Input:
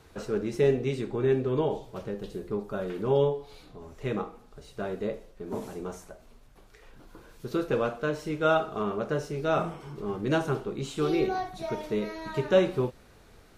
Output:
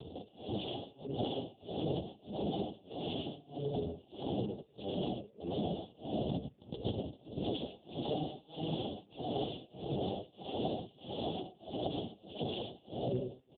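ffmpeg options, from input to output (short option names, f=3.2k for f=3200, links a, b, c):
-filter_complex "[0:a]asettb=1/sr,asplit=3[a][b][c];[a]atrim=end=0.644[d];[b]atrim=start=0.64:end=1.75,asetpts=PTS-STARTPTS,afade=t=in:d=0.004:c=qsin,afade=t=out:st=1.106:d=0.004:c=qsin,agate=range=-33dB:threshold=-23dB:ratio=3:detection=peak[e];[c]atrim=start=1.746[f];[d][e]acrossfade=d=0.004:c1=hsin:c2=qsin[g];[g][f]acrossfade=d=0.004:c1=qsin:c2=hsin,asplit=3[h][i][j];[h]afade=t=out:st=5.74:d=0.02[k];[i]lowshelf=f=360:g=11,afade=t=in:st=5.74:d=0.02,afade=t=out:st=7.62:d=0.02[l];[j]afade=t=in:st=7.62:d=0.02[m];[k][l][m]amix=inputs=3:normalize=0,asplit=2[n][o];[o]adelay=107,lowpass=f=2.9k:p=1,volume=-5.5dB,asplit=2[p][q];[q]adelay=107,lowpass=f=2.9k:p=1,volume=0.52,asplit=2[r][s];[s]adelay=107,lowpass=f=2.9k:p=1,volume=0.52,asplit=2[t][u];[u]adelay=107,lowpass=f=2.9k:p=1,volume=0.52,asplit=2[v][w];[w]adelay=107,lowpass=f=2.9k:p=1,volume=0.52,asplit=2[x][y];[y]adelay=107,lowpass=f=2.9k:p=1,volume=0.52,asplit=2[z][aa];[aa]adelay=107,lowpass=f=2.9k:p=1,volume=0.52[ab];[n][p][r][t][v][x][z][ab]amix=inputs=8:normalize=0,acrossover=split=190[ac][ad];[ad]acompressor=threshold=-43dB:ratio=4[ae];[ac][ae]amix=inputs=2:normalize=0,aeval=exprs='(mod(70.8*val(0)+1,2)-1)/70.8':c=same,tremolo=f=1.6:d=0.97,asettb=1/sr,asplit=3[af][ag][ah];[af]atrim=end=9.444[ai];[ag]atrim=start=9.44:end=10,asetpts=PTS-STARTPTS,afade=t=in:d=0.004:c=qsin,afade=t=out:st=0.556:d=0.004:c=qsin,asoftclip=type=hard:threshold=-39.5dB[aj];[ah]atrim=start=9.996[ak];[ai][aj]acrossfade=d=0.004:c1=hsin:c2=qsin[al];[al][ak]acrossfade=d=0.004:c1=qsin:c2=hsin,afftfilt=real='re*(1-between(b*sr/4096,830,2700))':imag='im*(1-between(b*sr/4096,830,2700))':win_size=4096:overlap=0.75,volume=13.5dB" -ar 8000 -c:a libopencore_amrnb -b:a 4750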